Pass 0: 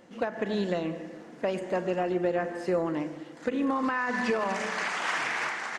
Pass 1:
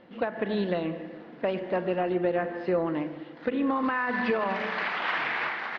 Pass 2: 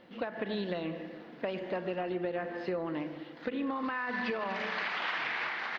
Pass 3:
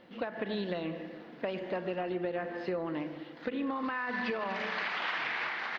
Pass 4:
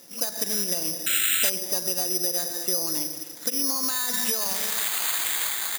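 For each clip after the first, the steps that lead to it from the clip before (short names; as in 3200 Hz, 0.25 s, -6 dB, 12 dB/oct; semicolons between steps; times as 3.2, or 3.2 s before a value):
steep low-pass 4100 Hz 36 dB/oct; gain +1 dB
high shelf 3600 Hz +11 dB; compressor 3:1, threshold -28 dBFS, peak gain reduction 6 dB; gain -3.5 dB
nothing audible
painted sound noise, 1.06–1.5, 1300–3000 Hz -31 dBFS; careless resampling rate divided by 8×, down none, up zero stuff; gain -1 dB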